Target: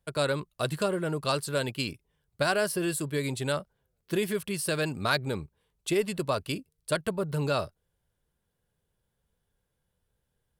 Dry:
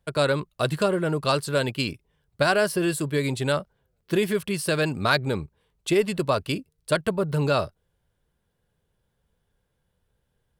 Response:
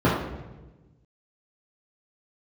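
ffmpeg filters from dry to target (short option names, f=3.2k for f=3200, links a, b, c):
-af "equalizer=f=12k:t=o:w=1.6:g=5.5,volume=-5.5dB"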